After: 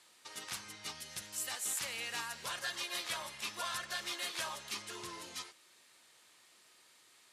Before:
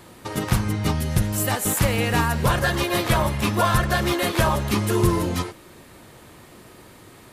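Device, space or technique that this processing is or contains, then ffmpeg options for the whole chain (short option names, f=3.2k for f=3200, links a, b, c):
piezo pickup straight into a mixer: -filter_complex "[0:a]lowpass=6k,aderivative,asettb=1/sr,asplit=3[a][b][c];[a]atrim=end=4.824[d];[b]atrim=start=4.82:end=5.22,asetpts=PTS-STARTPTS,afade=t=in:d=0.004:c=qsin,afade=t=out:st=0.396:d=0.004:c=qsin,highshelf=f=8.1k:g=-11[e];[c]atrim=start=5.216[f];[d][e]acrossfade=d=0.004:c1=hsin:c2=qsin[g];[g][f]acrossfade=d=0.004:c1=qsin:c2=hsin,volume=-3.5dB"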